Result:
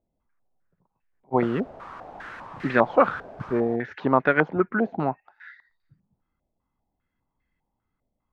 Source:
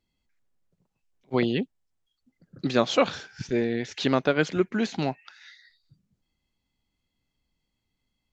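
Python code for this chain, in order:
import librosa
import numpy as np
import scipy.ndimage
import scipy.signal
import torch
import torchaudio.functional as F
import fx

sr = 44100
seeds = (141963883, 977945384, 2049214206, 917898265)

y = fx.quant_dither(x, sr, seeds[0], bits=6, dither='triangular', at=(1.41, 3.75), fade=0.02)
y = fx.filter_held_lowpass(y, sr, hz=5.0, low_hz=650.0, high_hz=1800.0)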